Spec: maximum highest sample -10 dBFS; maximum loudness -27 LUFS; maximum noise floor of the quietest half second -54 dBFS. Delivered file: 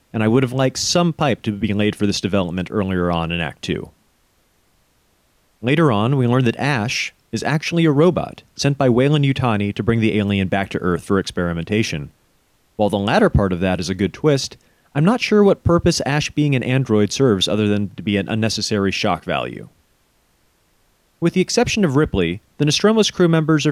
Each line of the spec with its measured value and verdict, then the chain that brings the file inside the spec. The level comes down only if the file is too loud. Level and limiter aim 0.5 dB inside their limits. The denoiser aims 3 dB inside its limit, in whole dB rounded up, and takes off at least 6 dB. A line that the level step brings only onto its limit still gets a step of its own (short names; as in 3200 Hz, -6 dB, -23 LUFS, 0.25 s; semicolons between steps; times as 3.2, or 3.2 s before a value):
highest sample -4.0 dBFS: fail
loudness -18.0 LUFS: fail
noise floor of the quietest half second -61 dBFS: OK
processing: gain -9.5 dB